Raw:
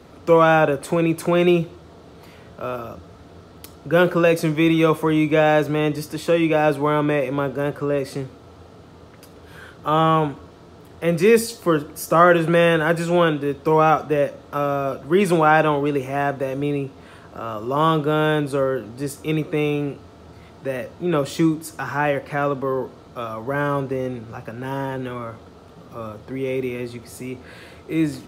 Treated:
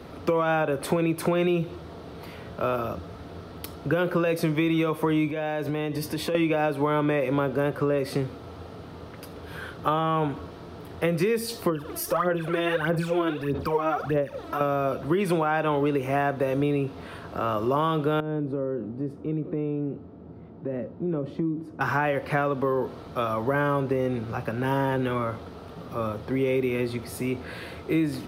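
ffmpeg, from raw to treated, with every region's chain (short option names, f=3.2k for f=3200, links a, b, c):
-filter_complex "[0:a]asettb=1/sr,asplit=3[a][b][c];[a]atrim=end=5.304[d];[b]atrim=start=5.3:end=6.35,asetpts=PTS-STARTPTS,afade=t=in:d=0.004:c=qsin,afade=t=out:st=1.046:d=0.004:c=qsin,acompressor=threshold=-27dB:ratio=12:attack=3.2:release=140:knee=1:detection=peak,asuperstop=centerf=1300:order=4:qfactor=7.4[e];[c]atrim=start=6.346[f];[d][e]acrossfade=d=0.004:c1=hsin:c2=qsin[g];[g][f]acrossfade=d=0.004:c1=qsin:c2=hsin,asettb=1/sr,asplit=3[h][i][j];[h]atrim=end=11.694[k];[i]atrim=start=11.69:end=14.61,asetpts=PTS-STARTPTS,afade=t=in:d=0.004:c=qsin,afade=t=out:st=2.916:d=0.004:c=qsin,acompressor=threshold=-35dB:ratio=2:attack=3.2:release=140:knee=1:detection=peak,aphaser=in_gain=1:out_gain=1:delay=3.1:decay=0.71:speed=1.6:type=sinusoidal[l];[j]atrim=start=14.606[m];[k][l]acrossfade=d=0.004:c1=hsin:c2=qsin[n];[n][m]acrossfade=d=0.004:c1=qsin:c2=hsin,asettb=1/sr,asplit=3[o][p][q];[o]atrim=end=18.204[r];[p]atrim=start=18.2:end=21.81,asetpts=PTS-STARTPTS,afade=t=in:d=0.004:c=qsin,afade=t=out:st=3.606:d=0.004:c=qsin,bandpass=f=220:t=q:w=0.96,acompressor=threshold=-29dB:ratio=3:attack=3.2:release=140:knee=1:detection=peak[s];[q]atrim=start=21.806[t];[r][s]acrossfade=d=0.004:c1=hsin:c2=qsin[u];[u][t]acrossfade=d=0.004:c1=qsin:c2=hsin,alimiter=limit=-12dB:level=0:latency=1:release=232,equalizer=f=7.2k:w=2.2:g=-9,acompressor=threshold=-24dB:ratio=6,volume=3.5dB"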